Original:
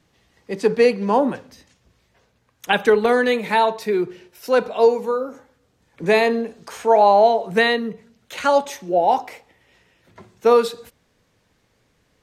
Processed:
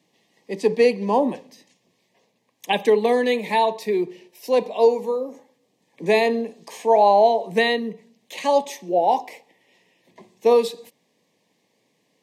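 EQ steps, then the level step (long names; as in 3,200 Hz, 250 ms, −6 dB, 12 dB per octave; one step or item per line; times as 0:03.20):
high-pass filter 170 Hz 24 dB per octave
Butterworth band-reject 1,400 Hz, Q 1.9
−1.5 dB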